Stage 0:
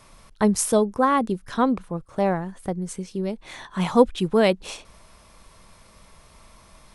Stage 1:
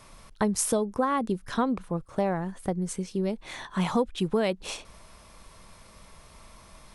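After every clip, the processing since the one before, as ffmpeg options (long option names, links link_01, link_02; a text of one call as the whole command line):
ffmpeg -i in.wav -af "acompressor=threshold=-22dB:ratio=5" out.wav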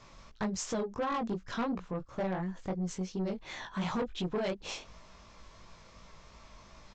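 ffmpeg -i in.wav -af "flanger=delay=16.5:depth=5.3:speed=2.8,aresample=16000,asoftclip=type=tanh:threshold=-28dB,aresample=44100" out.wav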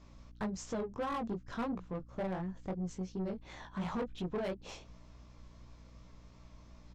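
ffmpeg -i in.wav -filter_complex "[0:a]aeval=exprs='val(0)+0.00251*(sin(2*PI*60*n/s)+sin(2*PI*2*60*n/s)/2+sin(2*PI*3*60*n/s)/3+sin(2*PI*4*60*n/s)/4+sin(2*PI*5*60*n/s)/5)':channel_layout=same,asplit=2[link_01][link_02];[link_02]adynamicsmooth=sensitivity=7.5:basefreq=610,volume=-0.5dB[link_03];[link_01][link_03]amix=inputs=2:normalize=0,volume=-9dB" out.wav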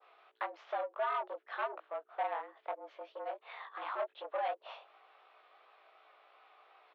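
ffmpeg -i in.wav -af "highpass=frequency=440:width_type=q:width=0.5412,highpass=frequency=440:width_type=q:width=1.307,lowpass=frequency=3300:width_type=q:width=0.5176,lowpass=frequency=3300:width_type=q:width=0.7071,lowpass=frequency=3300:width_type=q:width=1.932,afreqshift=140,adynamicequalizer=threshold=0.00126:dfrequency=2600:dqfactor=0.72:tfrequency=2600:tqfactor=0.72:attack=5:release=100:ratio=0.375:range=3:mode=cutabove:tftype=bell,volume=4.5dB" out.wav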